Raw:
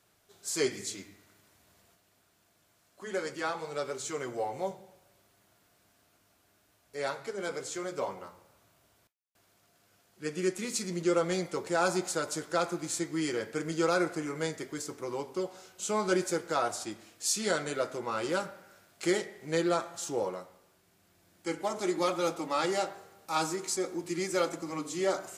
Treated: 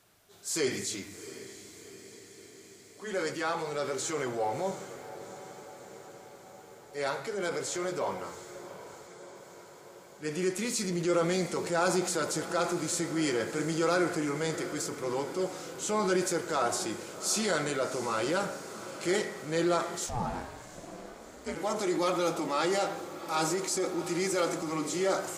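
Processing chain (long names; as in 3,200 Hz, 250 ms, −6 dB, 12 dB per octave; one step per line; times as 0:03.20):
in parallel at +2 dB: brickwall limiter −26 dBFS, peak gain reduction 10.5 dB
on the sum: transient designer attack −4 dB, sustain +3 dB
feedback delay with all-pass diffusion 724 ms, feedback 66%, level −13.5 dB
0:20.06–0:21.54: ring modulation 400 Hz → 93 Hz
level −3 dB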